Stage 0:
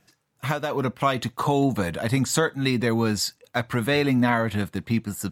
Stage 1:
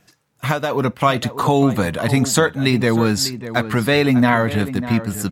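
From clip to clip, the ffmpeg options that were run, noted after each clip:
ffmpeg -i in.wav -filter_complex "[0:a]asplit=2[link_01][link_02];[link_02]adelay=596,lowpass=frequency=1800:poles=1,volume=-12dB,asplit=2[link_03][link_04];[link_04]adelay=596,lowpass=frequency=1800:poles=1,volume=0.18[link_05];[link_01][link_03][link_05]amix=inputs=3:normalize=0,volume=6dB" out.wav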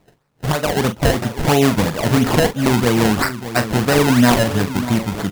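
ffmpeg -i in.wav -filter_complex "[0:a]acrusher=samples=26:mix=1:aa=0.000001:lfo=1:lforange=26:lforate=3,asplit=2[link_01][link_02];[link_02]adelay=41,volume=-10dB[link_03];[link_01][link_03]amix=inputs=2:normalize=0,volume=1dB" out.wav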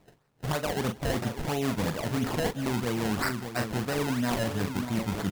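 ffmpeg -i in.wav -af "areverse,acompressor=threshold=-22dB:ratio=6,areverse,aecho=1:1:169:0.075,volume=-4dB" out.wav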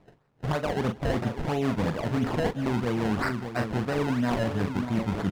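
ffmpeg -i in.wav -af "aemphasis=mode=reproduction:type=75kf,volume=2.5dB" out.wav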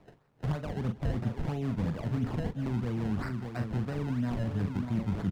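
ffmpeg -i in.wav -filter_complex "[0:a]acrossover=split=210[link_01][link_02];[link_02]acompressor=threshold=-42dB:ratio=3[link_03];[link_01][link_03]amix=inputs=2:normalize=0" out.wav

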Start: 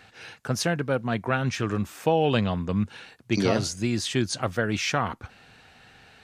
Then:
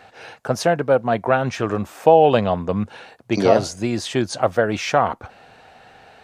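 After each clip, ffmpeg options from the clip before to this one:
ffmpeg -i in.wav -af "equalizer=frequency=660:width_type=o:width=1.6:gain=13" out.wav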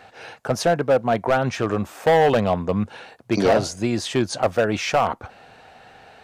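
ffmpeg -i in.wav -af "asoftclip=type=hard:threshold=-11.5dB" out.wav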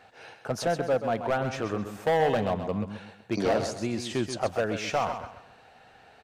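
ffmpeg -i in.wav -af "aecho=1:1:131|262|393|524:0.355|0.117|0.0386|0.0128,volume=-8dB" out.wav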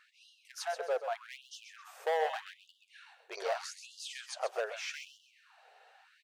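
ffmpeg -i in.wav -af "lowshelf=frequency=300:gain=-7,afftfilt=real='re*gte(b*sr/1024,350*pow(2800/350,0.5+0.5*sin(2*PI*0.82*pts/sr)))':imag='im*gte(b*sr/1024,350*pow(2800/350,0.5+0.5*sin(2*PI*0.82*pts/sr)))':win_size=1024:overlap=0.75,volume=-5.5dB" out.wav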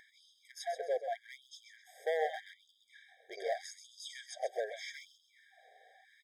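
ffmpeg -i in.wav -af "acompressor=mode=upward:threshold=-53dB:ratio=2.5,afftfilt=real='re*eq(mod(floor(b*sr/1024/780),2),0)':imag='im*eq(mod(floor(b*sr/1024/780),2),0)':win_size=1024:overlap=0.75,volume=-1dB" out.wav

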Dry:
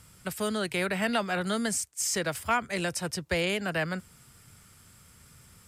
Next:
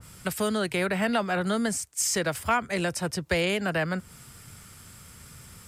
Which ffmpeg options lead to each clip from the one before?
ffmpeg -i in.wav -filter_complex "[0:a]asplit=2[link_01][link_02];[link_02]acompressor=threshold=-36dB:ratio=6,volume=2.5dB[link_03];[link_01][link_03]amix=inputs=2:normalize=0,adynamicequalizer=threshold=0.0112:dfrequency=1800:dqfactor=0.7:tfrequency=1800:tqfactor=0.7:attack=5:release=100:ratio=0.375:range=2.5:mode=cutabove:tftype=highshelf" out.wav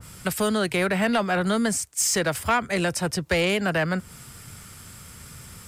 ffmpeg -i in.wav -af "asoftclip=type=tanh:threshold=-18dB,volume=4.5dB" out.wav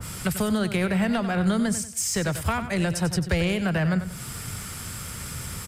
ffmpeg -i in.wav -filter_complex "[0:a]acrossover=split=160[link_01][link_02];[link_02]acompressor=threshold=-41dB:ratio=2.5[link_03];[link_01][link_03]amix=inputs=2:normalize=0,asplit=2[link_04][link_05];[link_05]aecho=0:1:94|188|282|376:0.282|0.093|0.0307|0.0101[link_06];[link_04][link_06]amix=inputs=2:normalize=0,volume=8.5dB" out.wav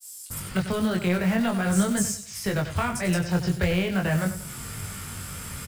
ffmpeg -i in.wav -filter_complex "[0:a]acrossover=split=5200[link_01][link_02];[link_01]adelay=300[link_03];[link_03][link_02]amix=inputs=2:normalize=0,acrusher=bits=5:mode=log:mix=0:aa=0.000001,flanger=delay=19.5:depth=3:speed=0.44,volume=2.5dB" out.wav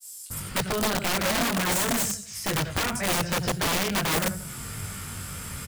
ffmpeg -i in.wav -af "aeval=exprs='(mod(10*val(0)+1,2)-1)/10':channel_layout=same" out.wav

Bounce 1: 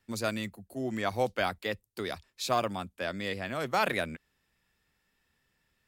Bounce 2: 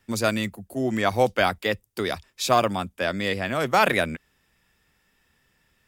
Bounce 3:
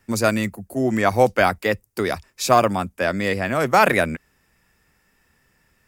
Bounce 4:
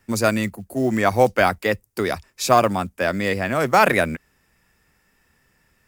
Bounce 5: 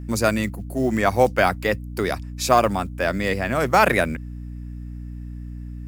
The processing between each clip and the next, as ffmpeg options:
ffmpeg -i in.wav -af "bandreject=frequency=4200:width=12,volume=8.5dB" out.wav
ffmpeg -i in.wav -af "equalizer=frequency=3400:width=2.5:gain=-8.5,volume=4.5dB" out.wav
ffmpeg -i in.wav -af "acrusher=bits=8:mode=log:mix=0:aa=0.000001" out.wav
ffmpeg -i in.wav -af "aeval=exprs='val(0)+0.0282*(sin(2*PI*60*n/s)+sin(2*PI*2*60*n/s)/2+sin(2*PI*3*60*n/s)/3+sin(2*PI*4*60*n/s)/4+sin(2*PI*5*60*n/s)/5)':channel_layout=same,volume=-1dB" out.wav

